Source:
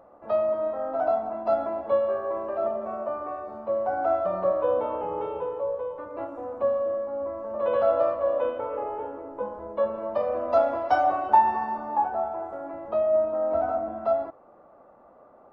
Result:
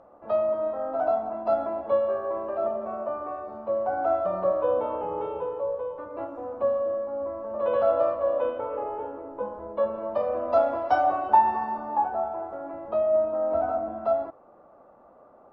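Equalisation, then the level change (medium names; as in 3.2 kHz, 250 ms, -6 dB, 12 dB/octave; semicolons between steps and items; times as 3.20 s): distance through air 57 m; peaking EQ 2 kHz -3 dB 0.41 oct; 0.0 dB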